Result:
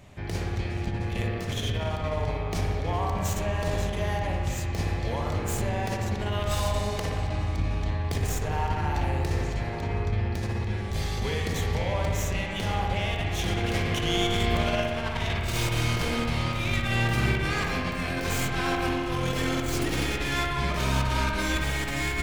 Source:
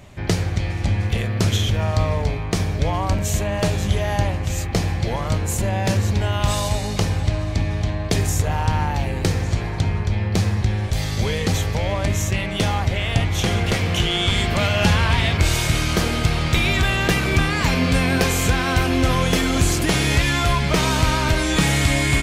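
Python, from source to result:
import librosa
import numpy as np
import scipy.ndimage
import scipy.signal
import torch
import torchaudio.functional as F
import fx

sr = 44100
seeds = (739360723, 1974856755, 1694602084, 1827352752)

y = fx.tracing_dist(x, sr, depth_ms=0.087)
y = fx.over_compress(y, sr, threshold_db=-20.0, ratio=-0.5)
y = fx.echo_wet_lowpass(y, sr, ms=60, feedback_pct=79, hz=2800.0, wet_db=-4.0)
y = y * 10.0 ** (-8.5 / 20.0)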